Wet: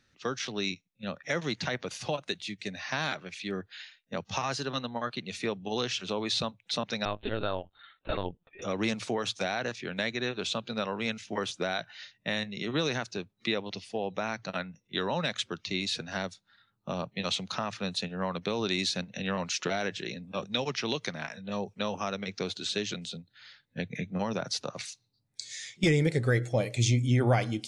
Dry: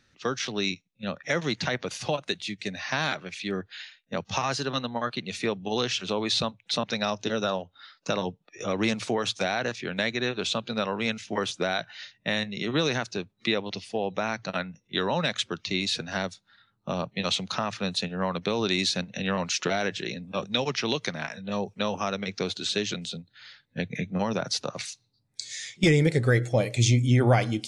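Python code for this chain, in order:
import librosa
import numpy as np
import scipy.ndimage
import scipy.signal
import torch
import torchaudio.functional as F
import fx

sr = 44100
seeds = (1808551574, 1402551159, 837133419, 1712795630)

y = fx.lpc_vocoder(x, sr, seeds[0], excitation='pitch_kept', order=16, at=(7.05, 8.62))
y = y * 10.0 ** (-4.0 / 20.0)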